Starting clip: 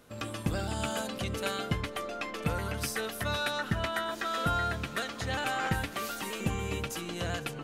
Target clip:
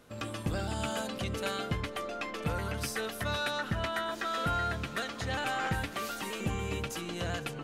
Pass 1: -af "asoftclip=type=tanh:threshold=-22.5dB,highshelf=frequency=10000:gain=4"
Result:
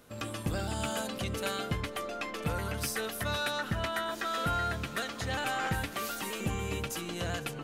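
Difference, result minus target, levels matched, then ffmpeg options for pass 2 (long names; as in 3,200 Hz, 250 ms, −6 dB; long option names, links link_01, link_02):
8,000 Hz band +2.5 dB
-af "asoftclip=type=tanh:threshold=-22.5dB,highshelf=frequency=10000:gain=-5"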